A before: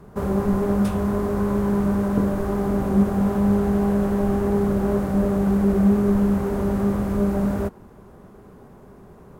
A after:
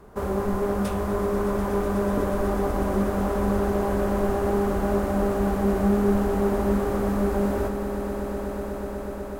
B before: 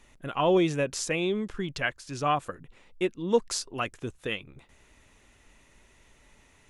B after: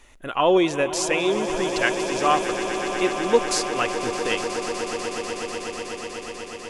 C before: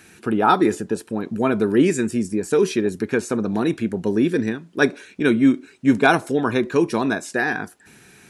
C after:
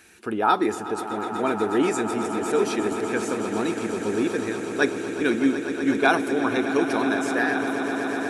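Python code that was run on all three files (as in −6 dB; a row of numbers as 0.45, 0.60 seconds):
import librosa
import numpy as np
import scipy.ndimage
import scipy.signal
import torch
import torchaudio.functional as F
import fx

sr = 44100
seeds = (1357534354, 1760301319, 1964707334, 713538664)

y = fx.peak_eq(x, sr, hz=150.0, db=-11.0, octaves=1.2)
y = fx.echo_swell(y, sr, ms=123, loudest=8, wet_db=-13.5)
y = y * 10.0 ** (-24 / 20.0) / np.sqrt(np.mean(np.square(y)))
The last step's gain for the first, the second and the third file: 0.0, +6.5, −3.5 decibels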